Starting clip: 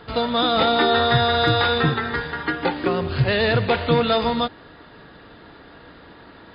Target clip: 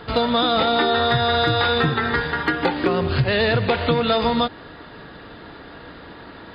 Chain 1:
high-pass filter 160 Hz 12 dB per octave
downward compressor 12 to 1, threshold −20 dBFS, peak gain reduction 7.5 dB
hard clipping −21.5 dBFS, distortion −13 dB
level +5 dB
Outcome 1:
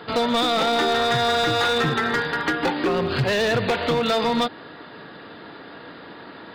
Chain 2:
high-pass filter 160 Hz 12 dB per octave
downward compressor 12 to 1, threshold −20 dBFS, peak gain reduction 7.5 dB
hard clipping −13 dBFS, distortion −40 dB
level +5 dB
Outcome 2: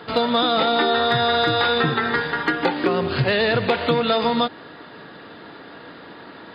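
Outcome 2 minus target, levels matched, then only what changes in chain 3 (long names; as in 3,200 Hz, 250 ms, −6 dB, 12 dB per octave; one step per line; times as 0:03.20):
125 Hz band −3.5 dB
remove: high-pass filter 160 Hz 12 dB per octave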